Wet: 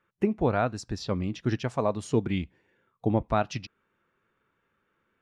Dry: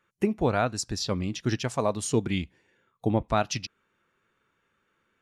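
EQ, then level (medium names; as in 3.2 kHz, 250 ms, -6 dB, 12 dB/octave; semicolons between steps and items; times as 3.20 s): treble shelf 3.8 kHz -11.5 dB; treble shelf 8.5 kHz -6.5 dB; 0.0 dB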